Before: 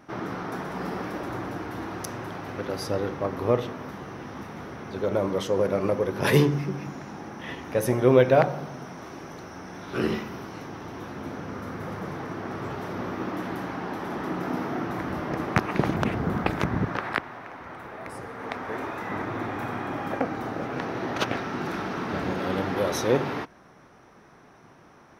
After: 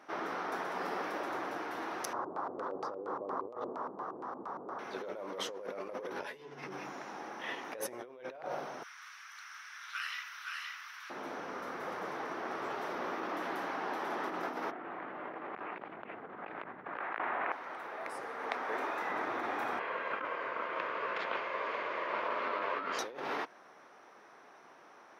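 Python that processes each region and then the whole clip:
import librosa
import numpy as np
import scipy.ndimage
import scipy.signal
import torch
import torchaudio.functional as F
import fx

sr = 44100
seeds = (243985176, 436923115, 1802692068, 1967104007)

y = fx.chain(x, sr, fx.high_shelf_res(hz=1700.0, db=-14.0, q=3.0),
    fx.filter_lfo_lowpass(shape='square', hz=4.3, low_hz=410.0, high_hz=5400.0, q=1.2), at=(2.13, 4.79))
y = fx.chain(y, sr, fx.high_shelf(hz=9200.0, db=-10.5),
    fx.notch(hz=1200.0, q=13.0),
    fx.doubler(ms=12.0, db=-5), at=(6.13, 6.67))
y = fx.chain(y, sr, fx.steep_highpass(hz=1300.0, slope=36),
    fx.echo_single(ms=519, db=-3.0), at=(8.83, 11.1))
y = fx.chain(y, sr, fx.lowpass(hz=2800.0, slope=24),
    fx.env_flatten(amount_pct=50), at=(14.71, 17.52))
y = fx.chain(y, sr, fx.ring_mod(carrier_hz=790.0),
    fx.lowpass(hz=3300.0, slope=12), at=(19.79, 22.99))
y = fx.high_shelf(y, sr, hz=6800.0, db=-6.0)
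y = fx.over_compress(y, sr, threshold_db=-31.0, ratio=-1.0)
y = scipy.signal.sosfilt(scipy.signal.butter(2, 470.0, 'highpass', fs=sr, output='sos'), y)
y = y * 10.0 ** (-5.0 / 20.0)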